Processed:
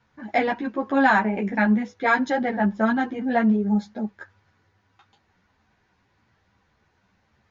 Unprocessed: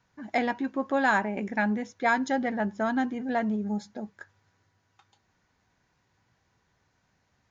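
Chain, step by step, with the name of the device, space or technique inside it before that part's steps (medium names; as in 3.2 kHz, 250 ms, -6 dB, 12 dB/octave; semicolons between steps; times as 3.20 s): string-machine ensemble chorus (three-phase chorus; low-pass 4.3 kHz 12 dB/octave); trim +8.5 dB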